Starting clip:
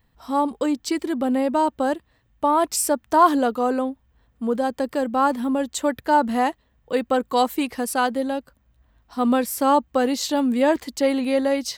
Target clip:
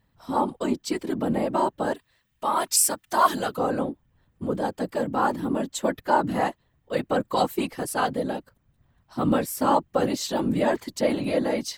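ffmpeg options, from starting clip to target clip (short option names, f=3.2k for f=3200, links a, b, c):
-filter_complex "[0:a]asettb=1/sr,asplit=3[a][b][c];[a]atrim=end=1.954[d];[b]atrim=start=1.95:end=3.57,asetpts=PTS-STARTPTS,afade=t=in:d=0.004:c=qsin,afade=t=out:st=1.616:d=0.004:c=qsin,tiltshelf=f=1.2k:g=-7.5[e];[c]atrim=start=3.566[f];[d][e]acrossfade=d=0.004:c1=hsin:c2=qsin[g];[g][f]acrossfade=d=0.004:c1=qsin:c2=hsin,afftfilt=real='hypot(re,im)*cos(2*PI*random(0))':imag='hypot(re,im)*sin(2*PI*random(1))':win_size=512:overlap=0.75,volume=2.5dB"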